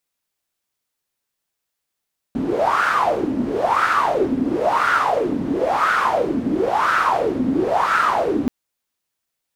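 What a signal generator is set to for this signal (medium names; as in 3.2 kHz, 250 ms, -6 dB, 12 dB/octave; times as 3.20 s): wind-like swept noise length 6.13 s, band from 250 Hz, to 1.4 kHz, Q 7.5, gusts 6, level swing 3.5 dB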